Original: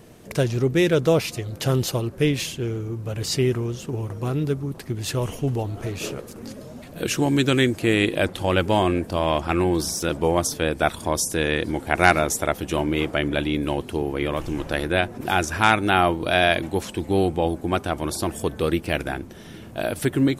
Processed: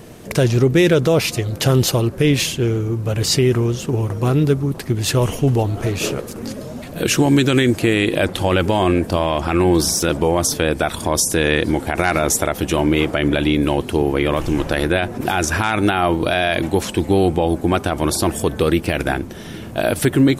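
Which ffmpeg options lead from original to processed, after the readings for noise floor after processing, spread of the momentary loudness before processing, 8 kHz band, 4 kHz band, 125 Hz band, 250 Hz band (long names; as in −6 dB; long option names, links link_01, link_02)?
−32 dBFS, 11 LU, +7.5 dB, +5.0 dB, +7.0 dB, +6.0 dB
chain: -af "alimiter=level_in=13.5dB:limit=-1dB:release=50:level=0:latency=1,volume=-5dB"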